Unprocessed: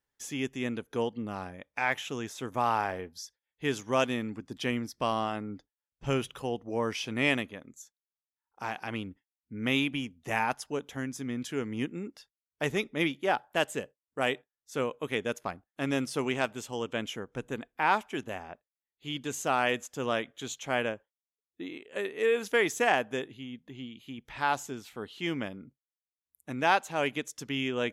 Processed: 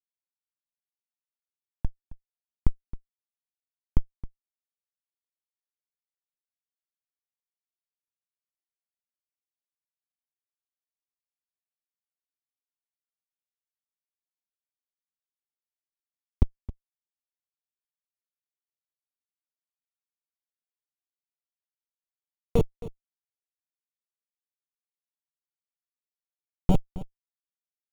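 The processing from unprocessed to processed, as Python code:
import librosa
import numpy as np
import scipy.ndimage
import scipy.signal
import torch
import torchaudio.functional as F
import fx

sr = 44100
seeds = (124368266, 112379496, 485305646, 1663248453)

p1 = fx.reverse_delay(x, sr, ms=330, wet_db=-7.0)
p2 = scipy.signal.sosfilt(scipy.signal.butter(2, 240.0, 'highpass', fs=sr, output='sos'), p1)
p3 = fx.high_shelf(p2, sr, hz=4600.0, db=4.0)
p4 = fx.level_steps(p3, sr, step_db=22)
p5 = p3 + F.gain(torch.from_numpy(p4), 2.5).numpy()
p6 = fx.sample_hold(p5, sr, seeds[0], rate_hz=6100.0, jitter_pct=0)
p7 = fx.schmitt(p6, sr, flips_db=-13.0)
p8 = fx.tilt_shelf(p7, sr, db=9.0, hz=650.0)
p9 = fx.env_flanger(p8, sr, rest_ms=2.4, full_db=-35.5)
p10 = p9 + fx.echo_single(p9, sr, ms=268, db=-16.5, dry=0)
y = F.gain(torch.from_numpy(p10), 8.0).numpy()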